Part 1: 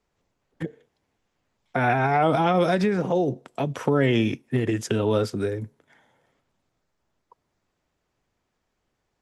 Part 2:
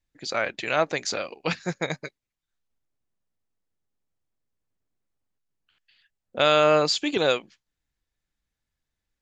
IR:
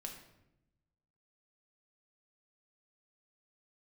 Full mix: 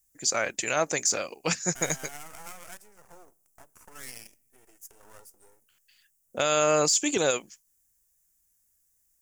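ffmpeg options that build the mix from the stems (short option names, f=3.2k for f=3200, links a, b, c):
-filter_complex "[0:a]afwtdn=0.0316,highpass=1.3k,aeval=exprs='max(val(0),0)':c=same,volume=-11.5dB,asplit=2[a][b];[b]volume=-16.5dB[c];[1:a]volume=-1.5dB[d];[2:a]atrim=start_sample=2205[e];[c][e]afir=irnorm=-1:irlink=0[f];[a][d][f]amix=inputs=3:normalize=0,aexciter=amount=9.3:drive=8.6:freq=6k,alimiter=limit=-13.5dB:level=0:latency=1:release=43"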